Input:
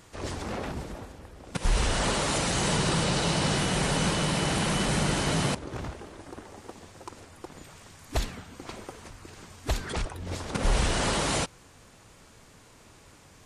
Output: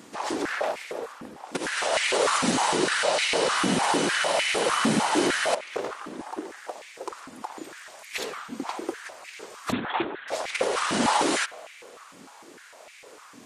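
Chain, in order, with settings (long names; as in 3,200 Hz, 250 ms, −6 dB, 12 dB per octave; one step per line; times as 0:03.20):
brickwall limiter −20.5 dBFS, peak gain reduction 7 dB
spring reverb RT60 2.4 s, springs 52 ms, chirp 65 ms, DRR 18.5 dB
0:09.72–0:10.28: linear-prediction vocoder at 8 kHz whisper
high-pass on a step sequencer 6.6 Hz 240–2,200 Hz
level +4 dB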